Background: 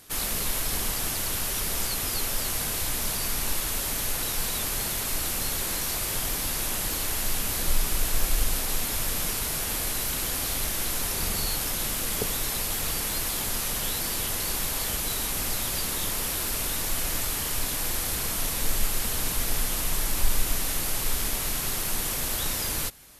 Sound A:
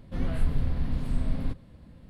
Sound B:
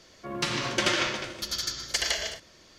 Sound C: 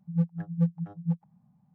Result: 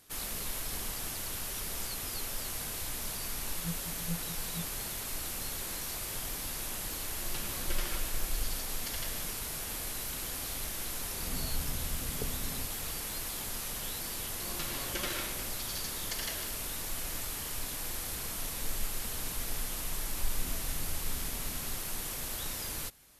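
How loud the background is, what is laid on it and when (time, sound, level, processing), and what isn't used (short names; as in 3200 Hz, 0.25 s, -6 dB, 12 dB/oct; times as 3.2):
background -9 dB
3.49 add C -13 dB
6.92 add B -16.5 dB
11.13 add A -11 dB
14.17 add B -12.5 dB
20.25 add A -15.5 dB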